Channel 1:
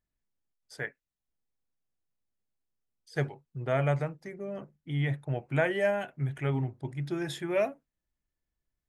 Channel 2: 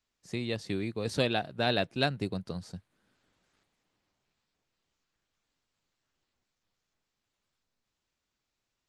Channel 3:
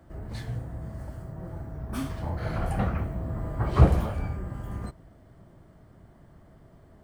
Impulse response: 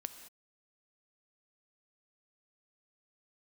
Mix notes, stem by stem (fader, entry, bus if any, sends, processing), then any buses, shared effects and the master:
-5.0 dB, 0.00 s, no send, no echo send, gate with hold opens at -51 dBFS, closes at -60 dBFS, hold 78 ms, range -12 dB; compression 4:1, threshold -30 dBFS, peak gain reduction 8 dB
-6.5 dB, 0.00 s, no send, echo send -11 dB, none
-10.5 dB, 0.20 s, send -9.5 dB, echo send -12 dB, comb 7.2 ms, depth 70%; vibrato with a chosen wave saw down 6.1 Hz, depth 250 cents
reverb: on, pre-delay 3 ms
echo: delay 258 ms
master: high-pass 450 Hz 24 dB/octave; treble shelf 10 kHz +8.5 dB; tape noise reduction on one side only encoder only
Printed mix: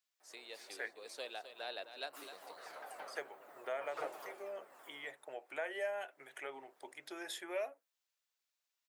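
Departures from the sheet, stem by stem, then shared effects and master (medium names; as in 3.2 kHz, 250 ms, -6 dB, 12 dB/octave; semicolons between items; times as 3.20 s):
stem 2 -6.5 dB -> -15.5 dB; stem 3 -10.5 dB -> -19.0 dB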